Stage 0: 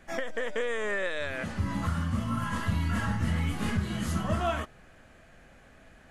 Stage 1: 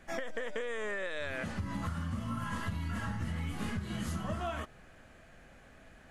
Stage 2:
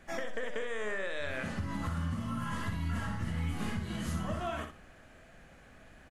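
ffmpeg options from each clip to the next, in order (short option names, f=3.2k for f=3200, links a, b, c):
-af "acompressor=threshold=-31dB:ratio=6,volume=-1.5dB"
-af "aecho=1:1:61|122|183:0.422|0.101|0.0243"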